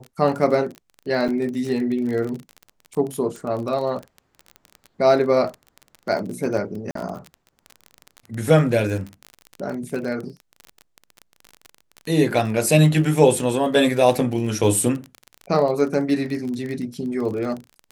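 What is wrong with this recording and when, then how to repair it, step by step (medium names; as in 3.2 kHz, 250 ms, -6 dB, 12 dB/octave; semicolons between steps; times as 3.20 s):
crackle 27 per s -27 dBFS
1.28–1.29 s: dropout 6.2 ms
6.91–6.95 s: dropout 43 ms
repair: de-click; interpolate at 1.28 s, 6.2 ms; interpolate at 6.91 s, 43 ms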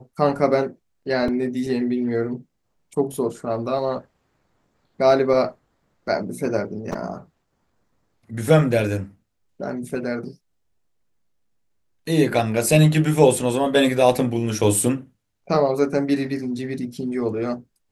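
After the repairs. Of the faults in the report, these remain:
nothing left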